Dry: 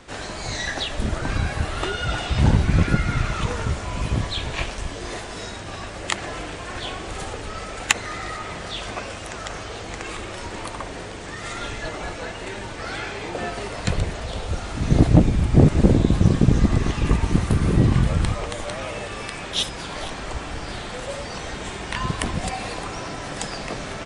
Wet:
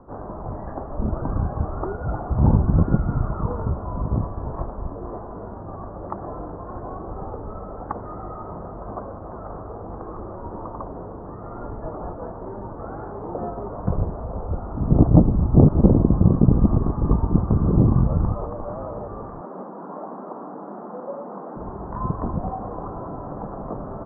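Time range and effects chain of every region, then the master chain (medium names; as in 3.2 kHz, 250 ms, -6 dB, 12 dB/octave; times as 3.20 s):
19.41–21.56 s: steep high-pass 180 Hz 48 dB/octave + companded quantiser 8-bit
whole clip: steep low-pass 1.2 kHz 48 dB/octave; peaking EQ 200 Hz +2 dB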